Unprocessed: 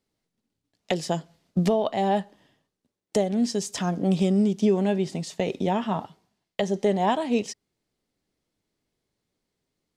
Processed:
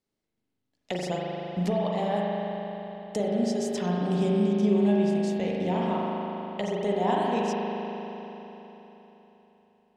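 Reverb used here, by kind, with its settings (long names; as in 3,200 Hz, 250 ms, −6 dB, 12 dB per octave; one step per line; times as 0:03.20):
spring reverb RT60 3.8 s, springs 39 ms, chirp 60 ms, DRR −4 dB
level −7 dB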